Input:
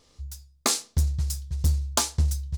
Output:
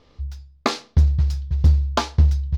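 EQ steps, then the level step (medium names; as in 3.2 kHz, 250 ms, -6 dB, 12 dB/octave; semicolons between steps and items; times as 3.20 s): distance through air 270 m; treble shelf 11 kHz +4.5 dB; +8.0 dB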